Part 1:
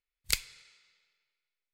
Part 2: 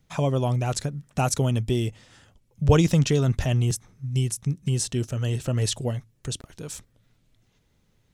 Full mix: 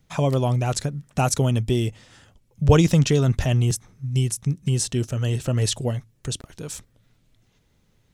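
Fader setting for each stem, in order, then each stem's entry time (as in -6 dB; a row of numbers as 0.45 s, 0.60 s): -18.0 dB, +2.5 dB; 0.00 s, 0.00 s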